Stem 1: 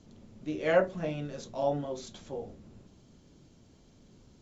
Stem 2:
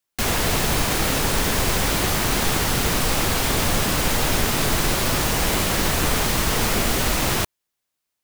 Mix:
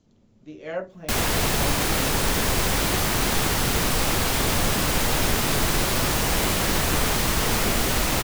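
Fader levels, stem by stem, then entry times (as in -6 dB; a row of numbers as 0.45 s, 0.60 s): -6.0 dB, -1.5 dB; 0.00 s, 0.90 s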